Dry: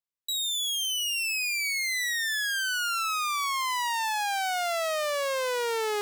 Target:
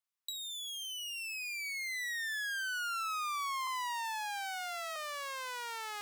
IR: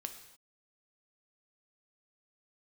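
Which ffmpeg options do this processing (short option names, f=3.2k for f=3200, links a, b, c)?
-filter_complex "[0:a]acrossover=split=420|1300[a][b][c];[a]acompressor=threshold=-47dB:ratio=4[d];[b]acompressor=threshold=-45dB:ratio=4[e];[c]acompressor=threshold=-42dB:ratio=4[f];[d][e][f]amix=inputs=3:normalize=0,lowshelf=f=630:t=q:w=1.5:g=-13.5,asettb=1/sr,asplit=3[g][h][i];[g]atrim=end=3.674[j];[h]atrim=start=3.67:end=4.96,asetpts=PTS-STARTPTS,afade=t=in:d=0.004:c=qsin,afade=t=out:st=1.286:d=0.004:c=qsin,afreqshift=24[k];[i]atrim=start=4.956[l];[j][k]acrossfade=d=0.004:c1=hsin:c2=qsin[m];[m][l]acrossfade=d=0.004:c1=qsin:c2=hsin"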